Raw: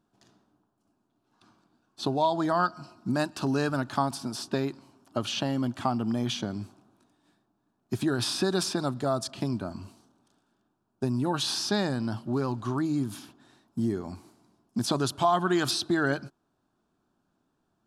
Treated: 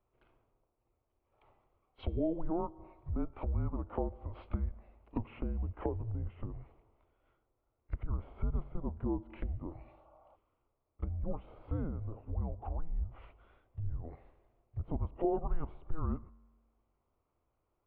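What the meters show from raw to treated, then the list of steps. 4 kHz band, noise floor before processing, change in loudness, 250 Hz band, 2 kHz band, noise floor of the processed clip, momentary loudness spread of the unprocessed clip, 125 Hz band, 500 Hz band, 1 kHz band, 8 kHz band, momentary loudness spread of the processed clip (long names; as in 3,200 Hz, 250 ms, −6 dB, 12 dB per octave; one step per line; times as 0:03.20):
below −30 dB, −76 dBFS, −10.5 dB, −12.0 dB, −26.0 dB, −81 dBFS, 10 LU, −5.0 dB, −11.0 dB, −16.0 dB, below −40 dB, 11 LU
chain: treble cut that deepens with the level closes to 660 Hz, closed at −26.5 dBFS
tuned comb filter 93 Hz, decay 1.4 s, harmonics all, mix 40%
echo ahead of the sound 32 ms −20.5 dB
healed spectral selection 0:09.89–0:10.33, 830–1,800 Hz before
single-sideband voice off tune −330 Hz 260–2,900 Hz
level +1 dB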